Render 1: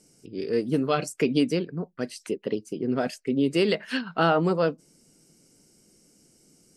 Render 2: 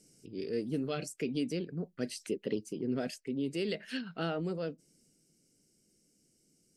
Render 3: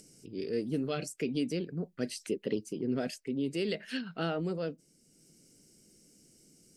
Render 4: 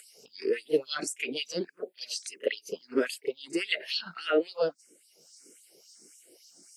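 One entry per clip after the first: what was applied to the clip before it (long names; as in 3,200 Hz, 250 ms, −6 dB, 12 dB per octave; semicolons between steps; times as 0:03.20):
parametric band 1,000 Hz −12.5 dB 0.94 octaves; speech leveller within 5 dB 0.5 s; transient designer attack −1 dB, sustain +3 dB; level −8 dB
upward compression, threshold −54 dBFS; level +1.5 dB
auto-filter high-pass sine 3.6 Hz 360–4,400 Hz; echo ahead of the sound 33 ms −17 dB; frequency shifter mixed with the dry sound +1.6 Hz; level +8.5 dB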